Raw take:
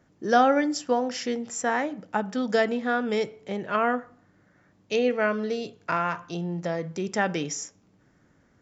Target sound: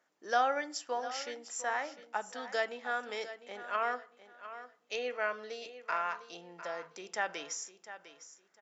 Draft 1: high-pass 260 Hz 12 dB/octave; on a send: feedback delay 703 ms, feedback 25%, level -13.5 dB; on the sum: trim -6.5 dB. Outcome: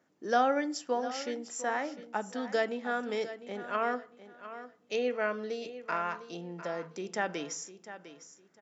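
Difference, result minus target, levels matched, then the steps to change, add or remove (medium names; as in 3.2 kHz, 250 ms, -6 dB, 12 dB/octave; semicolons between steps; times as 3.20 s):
250 Hz band +10.5 dB
change: high-pass 670 Hz 12 dB/octave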